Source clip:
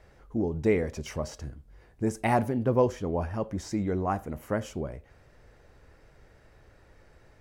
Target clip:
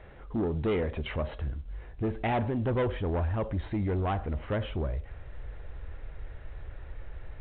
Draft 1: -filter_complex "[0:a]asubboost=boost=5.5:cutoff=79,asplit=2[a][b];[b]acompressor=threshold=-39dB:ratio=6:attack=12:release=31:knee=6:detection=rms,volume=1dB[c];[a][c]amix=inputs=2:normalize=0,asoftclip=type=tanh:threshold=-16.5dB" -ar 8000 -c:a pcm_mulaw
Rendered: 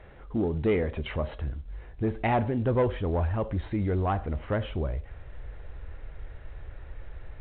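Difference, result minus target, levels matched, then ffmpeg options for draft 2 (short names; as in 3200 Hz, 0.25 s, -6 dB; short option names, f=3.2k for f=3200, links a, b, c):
soft clip: distortion -8 dB
-filter_complex "[0:a]asubboost=boost=5.5:cutoff=79,asplit=2[a][b];[b]acompressor=threshold=-39dB:ratio=6:attack=12:release=31:knee=6:detection=rms,volume=1dB[c];[a][c]amix=inputs=2:normalize=0,asoftclip=type=tanh:threshold=-23.5dB" -ar 8000 -c:a pcm_mulaw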